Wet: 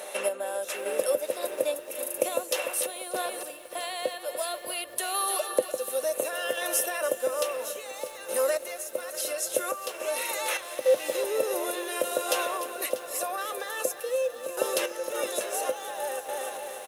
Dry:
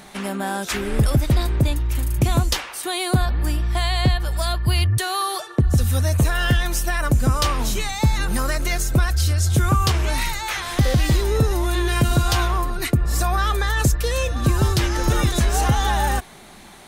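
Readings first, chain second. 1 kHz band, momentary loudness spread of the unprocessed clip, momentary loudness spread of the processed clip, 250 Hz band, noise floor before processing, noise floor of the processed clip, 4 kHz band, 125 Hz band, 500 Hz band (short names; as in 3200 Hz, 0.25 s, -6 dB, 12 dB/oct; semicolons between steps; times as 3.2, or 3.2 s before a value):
-8.5 dB, 5 LU, 7 LU, -17.5 dB, -40 dBFS, -42 dBFS, -9.5 dB, under -40 dB, +1.0 dB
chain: bell 600 Hz +11 dB 0.24 oct; feedback echo 0.295 s, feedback 59%, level -12 dB; compressor 1.5:1, threshold -37 dBFS, peak gain reduction 9 dB; bell 11000 Hz +12 dB 0.59 oct; notch 4600 Hz, Q 10; random-step tremolo, depth 75%; HPF 360 Hz 24 dB/oct; small resonant body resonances 510/2700 Hz, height 17 dB, ringing for 75 ms; lo-fi delay 0.641 s, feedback 55%, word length 7-bit, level -15 dB; gain +1 dB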